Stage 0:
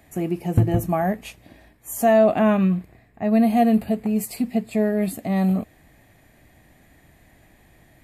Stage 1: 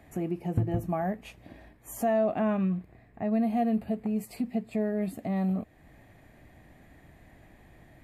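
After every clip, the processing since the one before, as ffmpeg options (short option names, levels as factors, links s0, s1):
-af "highshelf=f=3400:g=-10.5,acompressor=threshold=0.01:ratio=1.5"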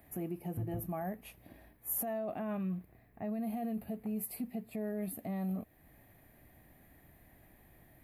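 -af "alimiter=limit=0.0668:level=0:latency=1:release=13,aexciter=amount=8.5:drive=4.5:freq=10000,volume=0.447"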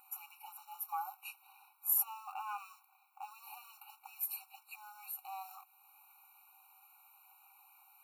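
-af "acrusher=bits=8:mode=log:mix=0:aa=0.000001,afftfilt=real='re*eq(mod(floor(b*sr/1024/750),2),1)':imag='im*eq(mod(floor(b*sr/1024/750),2),1)':win_size=1024:overlap=0.75,volume=2.24"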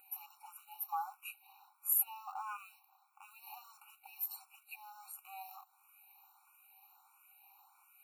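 -filter_complex "[0:a]asplit=2[s0][s1];[s1]afreqshift=1.5[s2];[s0][s2]amix=inputs=2:normalize=1,volume=1.19"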